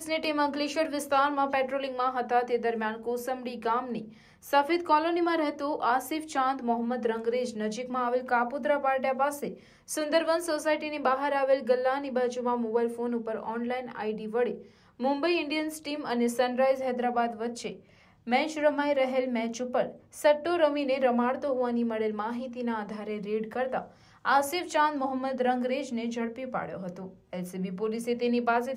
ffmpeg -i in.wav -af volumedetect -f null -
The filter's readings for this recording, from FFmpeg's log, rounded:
mean_volume: -28.8 dB
max_volume: -11.8 dB